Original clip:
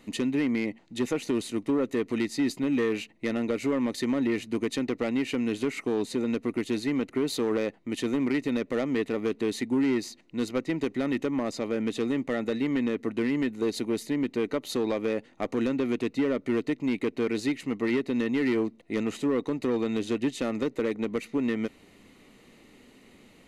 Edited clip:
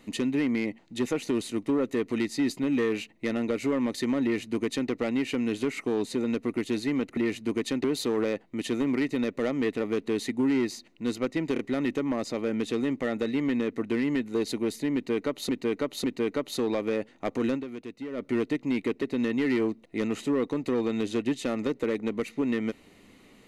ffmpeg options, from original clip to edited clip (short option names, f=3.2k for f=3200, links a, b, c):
-filter_complex "[0:a]asplit=10[a][b][c][d][e][f][g][h][i][j];[a]atrim=end=7.172[k];[b]atrim=start=4.228:end=4.902[l];[c]atrim=start=7.168:end=10.892[m];[d]atrim=start=10.858:end=10.892[n];[e]atrim=start=10.858:end=14.762[o];[f]atrim=start=14.208:end=14.762[p];[g]atrim=start=14.208:end=15.85,asetpts=PTS-STARTPTS,afade=t=out:st=1.502:d=0.14:c=qua:silence=0.281838[q];[h]atrim=start=15.85:end=16.26,asetpts=PTS-STARTPTS,volume=-11dB[r];[i]atrim=start=16.26:end=17.192,asetpts=PTS-STARTPTS,afade=t=in:d=0.14:c=qua:silence=0.281838[s];[j]atrim=start=17.978[t];[k][l]acrossfade=d=0.004:c1=hsin:c2=hsin[u];[u][m]acrossfade=d=0.004:c1=hsin:c2=hsin[v];[v][n]acrossfade=d=0.004:c1=hsin:c2=hsin[w];[w][o]acrossfade=d=0.004:c1=hsin:c2=hsin[x];[x][p]acrossfade=d=0.004:c1=hsin:c2=hsin[y];[q][r][s]concat=n=3:v=0:a=1[z];[y][z]acrossfade=d=0.004:c1=hsin:c2=hsin[aa];[aa][t]acrossfade=d=0.004:c1=hsin:c2=hsin"